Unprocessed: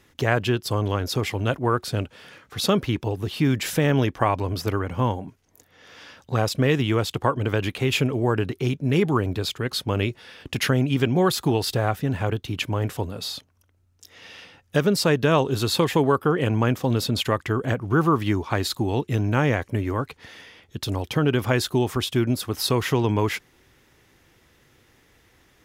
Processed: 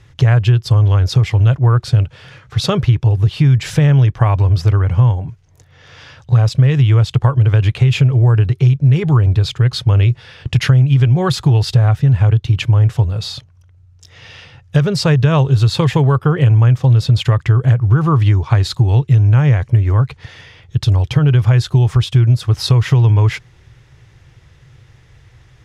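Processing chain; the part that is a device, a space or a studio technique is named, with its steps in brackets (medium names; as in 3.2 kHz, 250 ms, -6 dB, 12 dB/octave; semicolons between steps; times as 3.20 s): jukebox (low-pass 7.1 kHz 12 dB/octave; resonant low shelf 170 Hz +9.5 dB, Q 3; compression 4:1, threshold -14 dBFS, peak gain reduction 8 dB); trim +5.5 dB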